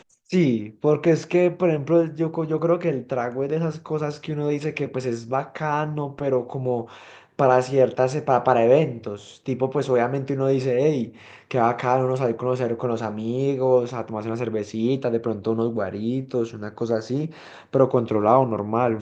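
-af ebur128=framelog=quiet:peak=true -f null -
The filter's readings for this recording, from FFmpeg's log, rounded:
Integrated loudness:
  I:         -22.9 LUFS
  Threshold: -33.1 LUFS
Loudness range:
  LRA:         4.7 LU
  Threshold: -43.4 LUFS
  LRA low:   -26.1 LUFS
  LRA high:  -21.4 LUFS
True peak:
  Peak:       -2.7 dBFS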